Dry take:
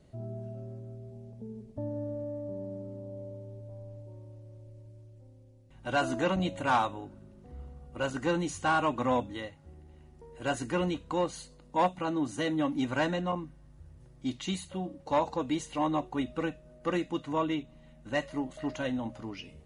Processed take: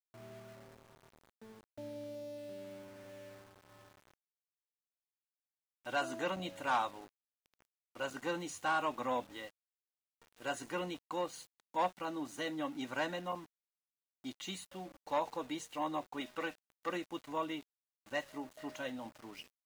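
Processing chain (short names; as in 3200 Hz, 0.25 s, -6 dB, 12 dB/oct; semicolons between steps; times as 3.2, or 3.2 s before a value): HPF 490 Hz 6 dB/oct; 16.2–16.89 overdrive pedal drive 11 dB, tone 5400 Hz, clips at -22 dBFS; sample gate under -48 dBFS; gain -5 dB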